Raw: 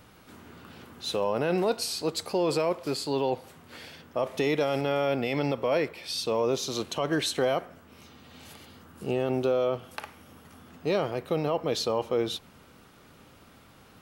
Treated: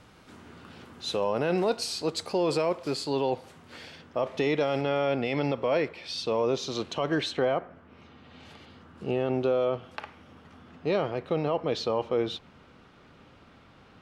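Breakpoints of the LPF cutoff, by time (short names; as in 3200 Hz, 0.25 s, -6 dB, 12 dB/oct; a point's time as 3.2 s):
3.77 s 8300 Hz
4.32 s 5000 Hz
7.18 s 5000 Hz
7.61 s 1900 Hz
8.52 s 4000 Hz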